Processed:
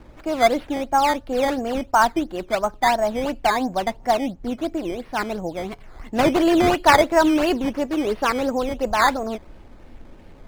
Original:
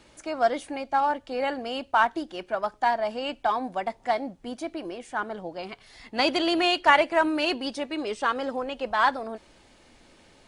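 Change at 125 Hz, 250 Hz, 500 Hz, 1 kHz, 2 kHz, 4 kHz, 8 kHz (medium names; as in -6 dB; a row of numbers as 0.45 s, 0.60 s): +16.0 dB, +9.0 dB, +6.5 dB, +4.5 dB, +3.0 dB, +1.0 dB, +13.0 dB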